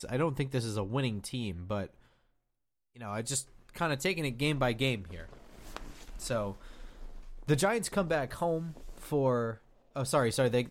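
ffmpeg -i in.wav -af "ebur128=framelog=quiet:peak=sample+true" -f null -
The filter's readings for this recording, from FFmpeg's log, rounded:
Integrated loudness:
  I:         -32.3 LUFS
  Threshold: -43.6 LUFS
Loudness range:
  LRA:         4.9 LU
  Threshold: -54.2 LUFS
  LRA low:   -36.7 LUFS
  LRA high:  -31.8 LUFS
Sample peak:
  Peak:      -13.2 dBFS
True peak:
  Peak:      -13.2 dBFS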